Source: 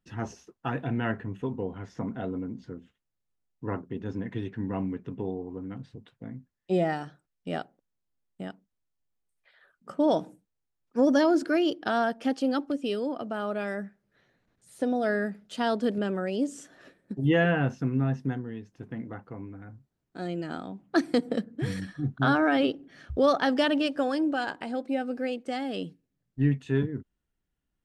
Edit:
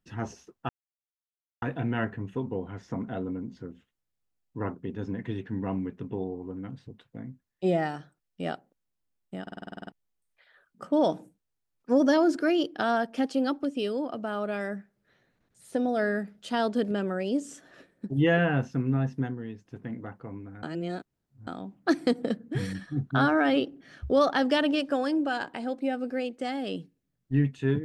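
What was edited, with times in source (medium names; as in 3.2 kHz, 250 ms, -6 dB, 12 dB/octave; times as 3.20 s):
0.69 s: insert silence 0.93 s
8.49 s: stutter in place 0.05 s, 10 plays
19.70–20.54 s: reverse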